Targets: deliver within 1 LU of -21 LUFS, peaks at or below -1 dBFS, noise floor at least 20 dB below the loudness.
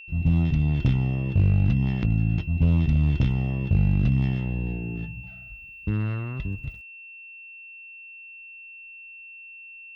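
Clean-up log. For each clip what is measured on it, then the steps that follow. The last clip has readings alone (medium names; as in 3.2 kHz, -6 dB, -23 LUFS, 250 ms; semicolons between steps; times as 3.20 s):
clipped samples 0.7%; clipping level -13.0 dBFS; steady tone 2.7 kHz; tone level -41 dBFS; loudness -24.5 LUFS; peak level -13.0 dBFS; loudness target -21.0 LUFS
-> clip repair -13 dBFS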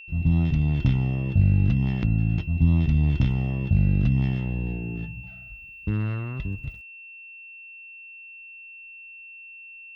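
clipped samples 0.0%; steady tone 2.7 kHz; tone level -41 dBFS
-> band-stop 2.7 kHz, Q 30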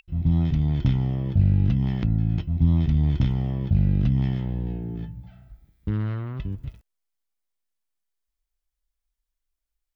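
steady tone not found; loudness -24.0 LUFS; peak level -7.5 dBFS; loudness target -21.0 LUFS
-> trim +3 dB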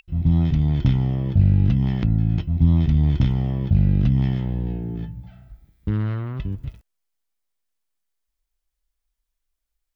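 loudness -21.0 LUFS; peak level -4.5 dBFS; noise floor -79 dBFS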